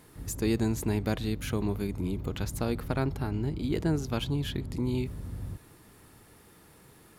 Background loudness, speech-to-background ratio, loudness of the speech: -40.5 LUFS, 8.5 dB, -32.0 LUFS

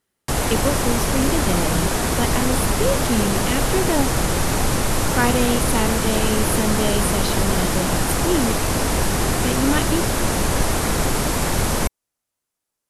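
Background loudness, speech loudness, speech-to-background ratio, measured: -21.0 LUFS, -24.5 LUFS, -3.5 dB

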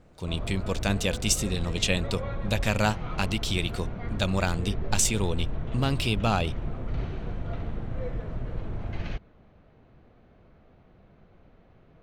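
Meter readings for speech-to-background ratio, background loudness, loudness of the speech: 7.0 dB, -35.5 LUFS, -28.5 LUFS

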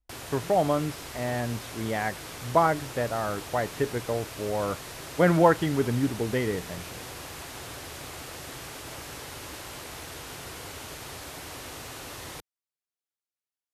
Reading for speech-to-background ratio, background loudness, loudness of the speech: 11.5 dB, -39.0 LUFS, -27.5 LUFS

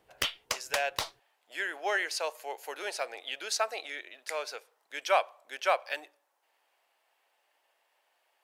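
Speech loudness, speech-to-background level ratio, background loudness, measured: -33.5 LUFS, 1.0 dB, -34.5 LUFS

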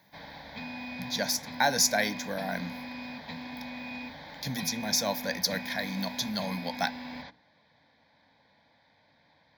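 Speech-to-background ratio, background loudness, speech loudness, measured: 10.5 dB, -40.5 LUFS, -30.0 LUFS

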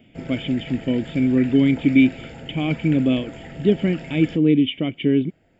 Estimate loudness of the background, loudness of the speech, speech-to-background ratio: -37.5 LUFS, -20.5 LUFS, 17.0 dB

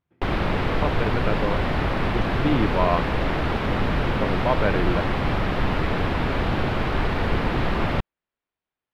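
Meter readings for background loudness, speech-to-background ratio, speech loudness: -24.5 LUFS, -3.0 dB, -27.5 LUFS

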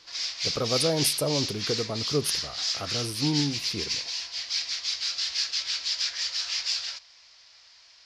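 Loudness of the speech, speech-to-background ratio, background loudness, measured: -30.0 LUFS, -2.0 dB, -28.0 LUFS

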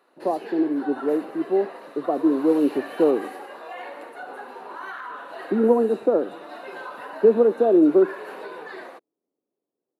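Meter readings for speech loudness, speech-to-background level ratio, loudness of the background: -21.5 LUFS, 16.5 dB, -38.0 LUFS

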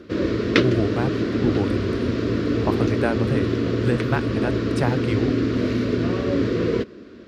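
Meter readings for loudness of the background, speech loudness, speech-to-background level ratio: -23.0 LUFS, -27.0 LUFS, -4.0 dB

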